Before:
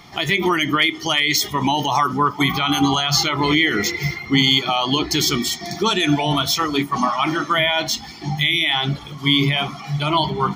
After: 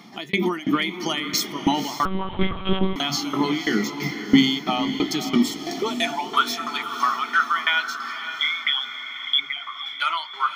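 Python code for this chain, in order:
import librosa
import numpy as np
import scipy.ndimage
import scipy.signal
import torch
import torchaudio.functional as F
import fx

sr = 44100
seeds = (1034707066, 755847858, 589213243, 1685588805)

p1 = fx.envelope_sharpen(x, sr, power=3.0, at=(8.28, 9.86))
p2 = fx.filter_sweep_highpass(p1, sr, from_hz=220.0, to_hz=1400.0, start_s=5.38, end_s=6.43, q=4.1)
p3 = fx.tremolo_shape(p2, sr, shape='saw_down', hz=3.0, depth_pct=100)
p4 = p3 + fx.echo_diffused(p3, sr, ms=536, feedback_pct=51, wet_db=-10.0, dry=0)
p5 = fx.lpc_monotone(p4, sr, seeds[0], pitch_hz=190.0, order=10, at=(2.05, 2.96))
y = p5 * librosa.db_to_amplitude(-3.0)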